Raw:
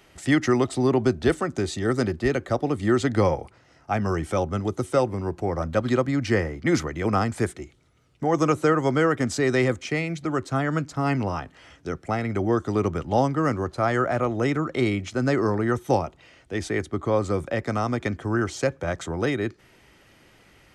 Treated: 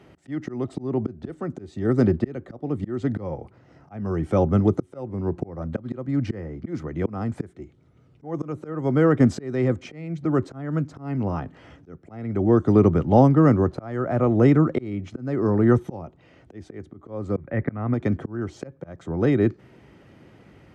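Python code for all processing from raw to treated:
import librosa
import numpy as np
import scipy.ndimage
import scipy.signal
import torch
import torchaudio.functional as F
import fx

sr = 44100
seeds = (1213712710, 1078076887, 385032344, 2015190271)

y = fx.chain(x, sr, fx.lowpass_res(hz=2000.0, q=2.8),
    fx.low_shelf(hz=180.0, db=8.5), at=(17.36, 17.94))
y = fx.tilt_eq(y, sr, slope=-4.0)
y = fx.auto_swell(y, sr, attack_ms=583.0)
y = scipy.signal.sosfilt(scipy.signal.butter(2, 140.0, 'highpass', fs=sr, output='sos'), y)
y = F.gain(torch.from_numpy(y), 1.5).numpy()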